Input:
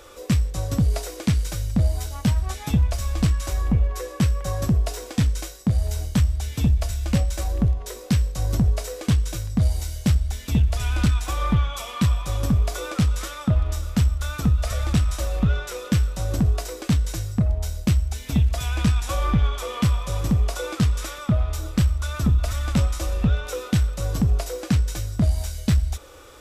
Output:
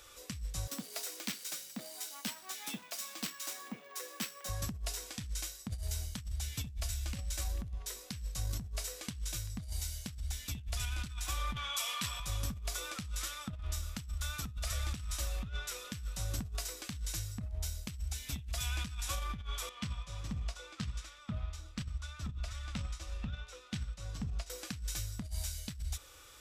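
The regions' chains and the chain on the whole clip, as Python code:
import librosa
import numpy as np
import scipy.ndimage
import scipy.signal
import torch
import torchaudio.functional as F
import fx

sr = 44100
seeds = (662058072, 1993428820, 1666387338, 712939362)

y = fx.chain(x, sr, fx.steep_highpass(hz=220.0, slope=36),
    fx.resample_bad(factor=2, down='none', up='hold'), at=(0.67, 4.49))
y = fx.chain(y, sr, fx.highpass(hz=530.0, slope=6),
    fx.env_flatten(amount_pct=50), at=(11.56, 12.2))
y = fx.chain(y, sr, fx.air_absorb(metres=70.0),
    fx.hum_notches(base_hz=60, count=10),
    fx.upward_expand(threshold_db=-34.0, expansion=1.5), at=(19.69, 24.5))
y = fx.tone_stack(y, sr, knobs='5-5-5')
y = fx.over_compress(y, sr, threshold_db=-36.0, ratio=-0.5)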